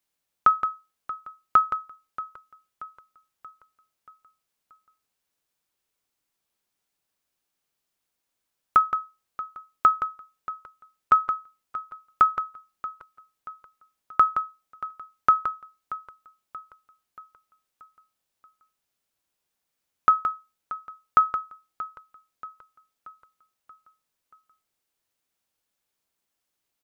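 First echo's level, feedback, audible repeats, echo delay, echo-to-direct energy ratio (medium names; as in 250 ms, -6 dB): -16.0 dB, 51%, 4, 631 ms, -14.5 dB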